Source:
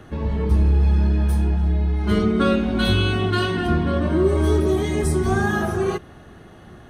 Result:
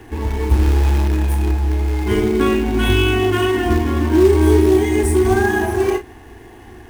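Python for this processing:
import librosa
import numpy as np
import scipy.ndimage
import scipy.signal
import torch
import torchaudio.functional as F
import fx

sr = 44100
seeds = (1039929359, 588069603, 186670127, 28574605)

p1 = fx.fixed_phaser(x, sr, hz=870.0, stages=8)
p2 = fx.quant_companded(p1, sr, bits=4)
p3 = p1 + F.gain(torch.from_numpy(p2), -5.5).numpy()
p4 = fx.doubler(p3, sr, ms=35.0, db=-9)
y = F.gain(torch.from_numpy(p4), 3.0).numpy()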